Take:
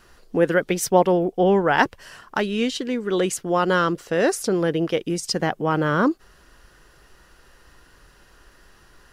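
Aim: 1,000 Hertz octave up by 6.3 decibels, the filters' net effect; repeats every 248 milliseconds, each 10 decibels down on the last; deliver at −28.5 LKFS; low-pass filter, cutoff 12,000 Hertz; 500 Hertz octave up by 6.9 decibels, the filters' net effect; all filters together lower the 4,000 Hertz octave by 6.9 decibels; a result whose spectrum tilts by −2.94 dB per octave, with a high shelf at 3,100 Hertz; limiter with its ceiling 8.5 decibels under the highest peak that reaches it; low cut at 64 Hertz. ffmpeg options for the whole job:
ffmpeg -i in.wav -af "highpass=64,lowpass=12000,equalizer=frequency=500:width_type=o:gain=7,equalizer=frequency=1000:width_type=o:gain=6.5,highshelf=frequency=3100:gain=-5,equalizer=frequency=4000:width_type=o:gain=-6.5,alimiter=limit=-5.5dB:level=0:latency=1,aecho=1:1:248|496|744|992:0.316|0.101|0.0324|0.0104,volume=-11dB" out.wav

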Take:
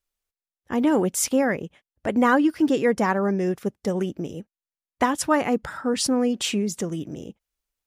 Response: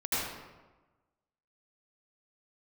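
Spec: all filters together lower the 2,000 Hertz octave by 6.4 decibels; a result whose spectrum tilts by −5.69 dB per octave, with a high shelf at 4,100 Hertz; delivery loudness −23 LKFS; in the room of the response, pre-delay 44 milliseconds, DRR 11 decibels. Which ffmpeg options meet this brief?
-filter_complex "[0:a]equalizer=frequency=2000:width_type=o:gain=-7,highshelf=frequency=4100:gain=-8.5,asplit=2[link_01][link_02];[1:a]atrim=start_sample=2205,adelay=44[link_03];[link_02][link_03]afir=irnorm=-1:irlink=0,volume=-20dB[link_04];[link_01][link_04]amix=inputs=2:normalize=0,volume=1dB"

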